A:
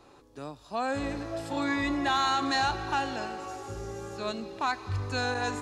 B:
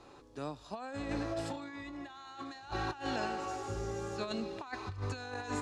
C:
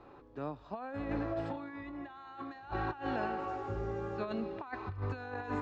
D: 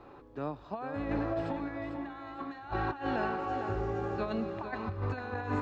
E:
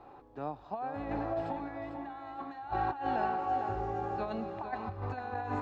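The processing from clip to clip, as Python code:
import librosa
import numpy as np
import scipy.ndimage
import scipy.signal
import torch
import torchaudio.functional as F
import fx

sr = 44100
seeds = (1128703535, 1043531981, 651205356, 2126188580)

y1 = scipy.signal.sosfilt(scipy.signal.butter(2, 8900.0, 'lowpass', fs=sr, output='sos'), x)
y1 = fx.over_compress(y1, sr, threshold_db=-34.0, ratio=-0.5)
y1 = F.gain(torch.from_numpy(y1), -4.0).numpy()
y2 = scipy.signal.sosfilt(scipy.signal.butter(2, 2000.0, 'lowpass', fs=sr, output='sos'), y1)
y2 = F.gain(torch.from_numpy(y2), 1.0).numpy()
y3 = fx.echo_feedback(y2, sr, ms=449, feedback_pct=32, wet_db=-8.5)
y3 = F.gain(torch.from_numpy(y3), 3.0).numpy()
y4 = fx.peak_eq(y3, sr, hz=780.0, db=10.5, octaves=0.44)
y4 = F.gain(torch.from_numpy(y4), -4.5).numpy()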